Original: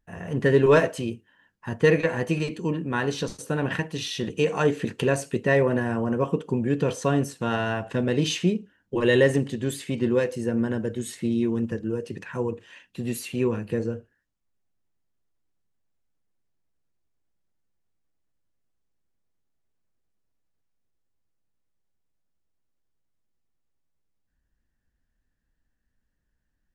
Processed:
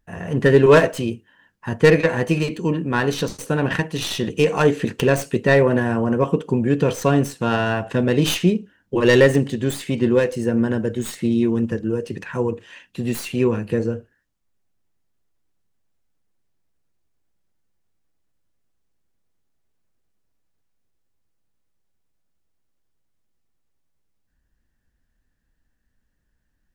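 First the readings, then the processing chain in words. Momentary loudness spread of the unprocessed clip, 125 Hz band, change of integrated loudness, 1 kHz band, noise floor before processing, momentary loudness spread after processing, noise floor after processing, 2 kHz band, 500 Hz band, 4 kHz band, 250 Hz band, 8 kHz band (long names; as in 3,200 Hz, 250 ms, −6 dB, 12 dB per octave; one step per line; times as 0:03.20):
12 LU, +5.5 dB, +5.5 dB, +5.5 dB, −76 dBFS, 12 LU, −71 dBFS, +5.5 dB, +5.5 dB, +5.5 dB, +5.5 dB, +4.5 dB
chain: stylus tracing distortion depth 0.078 ms
level +5.5 dB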